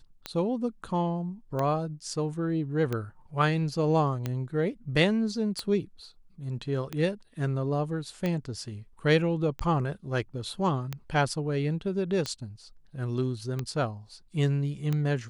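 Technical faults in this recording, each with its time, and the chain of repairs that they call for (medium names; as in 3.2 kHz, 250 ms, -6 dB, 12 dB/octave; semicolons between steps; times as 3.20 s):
tick 45 rpm -17 dBFS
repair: de-click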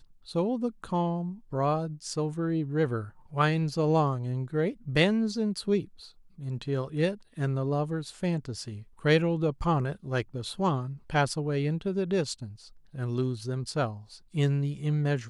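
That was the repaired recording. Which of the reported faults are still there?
nothing left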